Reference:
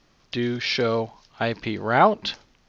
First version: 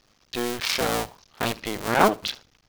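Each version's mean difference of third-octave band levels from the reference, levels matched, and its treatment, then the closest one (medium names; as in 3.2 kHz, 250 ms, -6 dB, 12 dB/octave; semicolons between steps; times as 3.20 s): 10.5 dB: cycle switcher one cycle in 2, muted; treble shelf 4.1 kHz +8 dB; feedback delay 73 ms, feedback 18%, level -22 dB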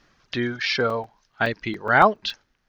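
4.5 dB: reverb removal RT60 1.8 s; peaking EQ 1.6 kHz +8 dB 0.66 oct; crackling interface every 0.14 s, samples 128, zero, from 0.90 s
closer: second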